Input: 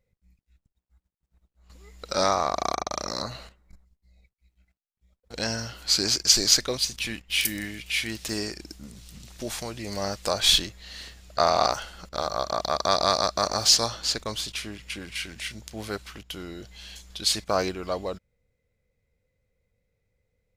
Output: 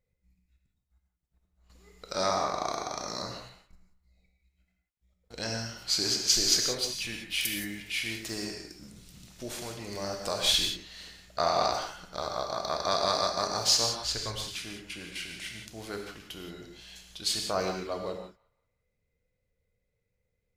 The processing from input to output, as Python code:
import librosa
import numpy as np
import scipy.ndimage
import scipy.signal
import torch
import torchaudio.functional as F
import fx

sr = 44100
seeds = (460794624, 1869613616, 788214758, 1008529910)

y = fx.low_shelf_res(x, sr, hz=130.0, db=7.0, q=1.5, at=(14.04, 14.46))
y = fx.echo_wet_bandpass(y, sr, ms=177, feedback_pct=32, hz=1600.0, wet_db=-23)
y = fx.rev_gated(y, sr, seeds[0], gate_ms=200, shape='flat', drr_db=2.0)
y = y * librosa.db_to_amplitude(-6.5)